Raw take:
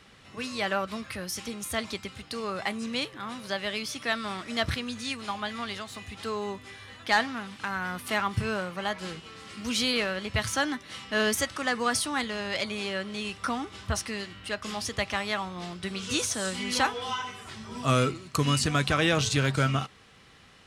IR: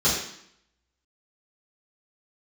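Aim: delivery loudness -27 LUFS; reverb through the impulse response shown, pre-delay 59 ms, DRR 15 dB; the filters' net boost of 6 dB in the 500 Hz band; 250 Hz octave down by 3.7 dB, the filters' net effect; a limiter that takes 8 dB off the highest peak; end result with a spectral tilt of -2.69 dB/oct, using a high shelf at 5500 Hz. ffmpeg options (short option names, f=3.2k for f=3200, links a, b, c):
-filter_complex "[0:a]equalizer=f=250:t=o:g=-7.5,equalizer=f=500:t=o:g=9,highshelf=f=5.5k:g=7.5,alimiter=limit=-14.5dB:level=0:latency=1,asplit=2[a][b];[1:a]atrim=start_sample=2205,adelay=59[c];[b][c]afir=irnorm=-1:irlink=0,volume=-30dB[d];[a][d]amix=inputs=2:normalize=0,volume=1.5dB"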